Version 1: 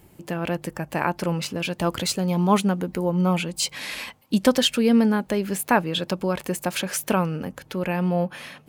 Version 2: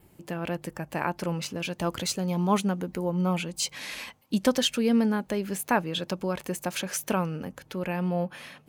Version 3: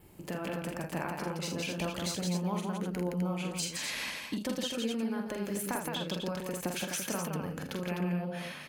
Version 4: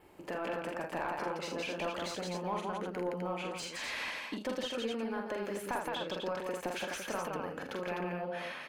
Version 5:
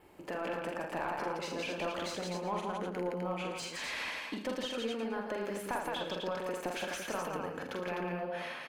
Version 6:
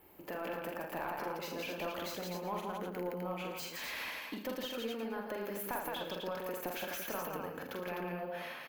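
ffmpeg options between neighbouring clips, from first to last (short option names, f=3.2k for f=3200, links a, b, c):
-af "adynamicequalizer=threshold=0.00316:dfrequency=6200:dqfactor=6.4:tfrequency=6200:tqfactor=6.4:attack=5:release=100:ratio=0.375:range=2.5:mode=boostabove:tftype=bell,volume=-5dB"
-filter_complex "[0:a]acompressor=threshold=-34dB:ratio=6,asplit=2[a][b];[b]aecho=0:1:45|79|167|254:0.596|0.211|0.631|0.501[c];[a][c]amix=inputs=2:normalize=0"
-filter_complex "[0:a]equalizer=f=150:w=1.3:g=-8,asplit=2[a][b];[b]highpass=f=720:p=1,volume=16dB,asoftclip=type=tanh:threshold=-17.5dB[c];[a][c]amix=inputs=2:normalize=0,lowpass=f=1.2k:p=1,volume=-6dB,volume=-3dB"
-af "aecho=1:1:111|222|333|444:0.251|0.098|0.0382|0.0149"
-af "aexciter=amount=8.4:drive=6.9:freq=12k,volume=-3dB"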